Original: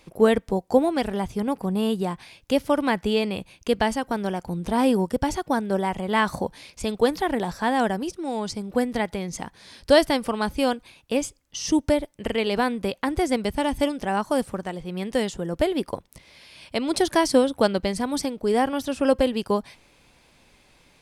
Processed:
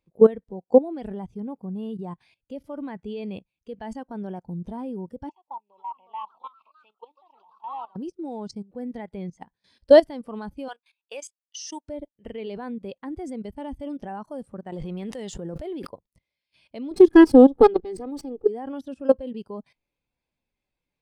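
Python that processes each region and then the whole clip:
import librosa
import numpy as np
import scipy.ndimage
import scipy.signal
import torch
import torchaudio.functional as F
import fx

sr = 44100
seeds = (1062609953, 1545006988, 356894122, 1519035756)

y = fx.chain(x, sr, fx.double_bandpass(hz=1600.0, octaves=1.5),
    fx.echo_pitch(ms=429, semitones=3, count=2, db_per_echo=-6.0), at=(5.29, 7.96))
y = fx.chain(y, sr, fx.highpass(hz=860.0, slope=12),
    fx.leveller(passes=1), at=(10.68, 11.89))
y = fx.chain(y, sr, fx.law_mismatch(coded='A'),
    fx.low_shelf(hz=500.0, db=-4.5),
    fx.env_flatten(amount_pct=100), at=(14.72, 15.87))
y = fx.chain(y, sr, fx.lower_of_two(delay_ms=2.4),
    fx.peak_eq(hz=210.0, db=10.0, octaves=2.1), at=(16.91, 18.48))
y = fx.level_steps(y, sr, step_db=16)
y = fx.spectral_expand(y, sr, expansion=1.5)
y = y * librosa.db_to_amplitude(4.0)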